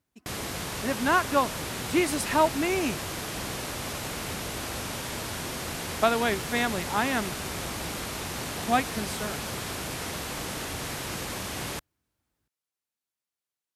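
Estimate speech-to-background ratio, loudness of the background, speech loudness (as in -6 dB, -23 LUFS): 5.5 dB, -33.0 LUFS, -27.5 LUFS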